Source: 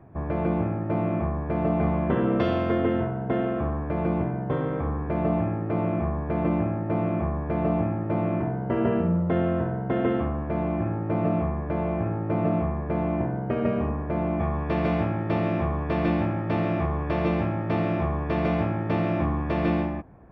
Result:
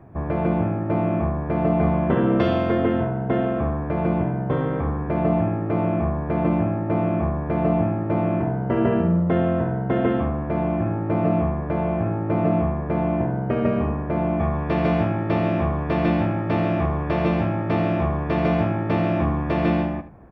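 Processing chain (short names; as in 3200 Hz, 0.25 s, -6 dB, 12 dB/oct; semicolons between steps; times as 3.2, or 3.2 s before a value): echo 76 ms -13.5 dB; gain +3.5 dB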